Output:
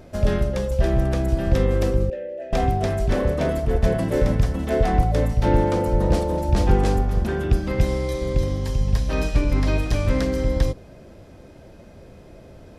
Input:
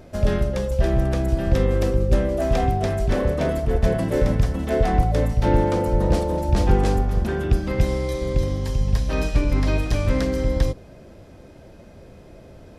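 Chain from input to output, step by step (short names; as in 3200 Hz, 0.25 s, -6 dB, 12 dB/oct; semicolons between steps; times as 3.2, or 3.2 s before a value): 2.1–2.53 vowel filter e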